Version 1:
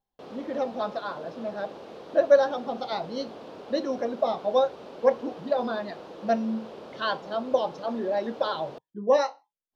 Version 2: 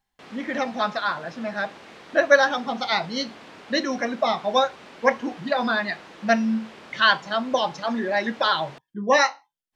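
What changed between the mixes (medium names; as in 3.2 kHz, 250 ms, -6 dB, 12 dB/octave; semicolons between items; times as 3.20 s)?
speech +7.0 dB; master: add graphic EQ 500/2000/8000 Hz -9/+12/+10 dB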